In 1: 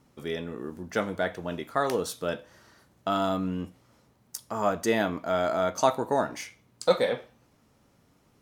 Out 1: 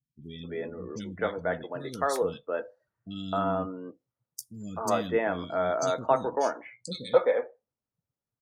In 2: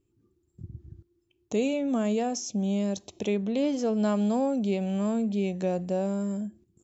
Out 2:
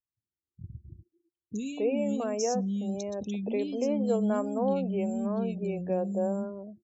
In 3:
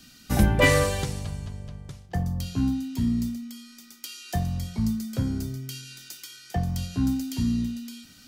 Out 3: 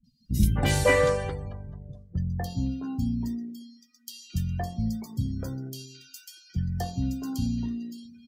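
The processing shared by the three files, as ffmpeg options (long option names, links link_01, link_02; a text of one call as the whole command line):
ffmpeg -i in.wav -filter_complex "[0:a]acrossover=split=270|2700[link_01][link_02][link_03];[link_03]adelay=40[link_04];[link_02]adelay=260[link_05];[link_01][link_05][link_04]amix=inputs=3:normalize=0,afftdn=noise_reduction=29:noise_floor=-45,adynamicequalizer=threshold=0.00631:dfrequency=490:dqfactor=7.2:tfrequency=490:tqfactor=7.2:attack=5:release=100:ratio=0.375:range=2.5:mode=boostabove:tftype=bell,volume=-1dB" out.wav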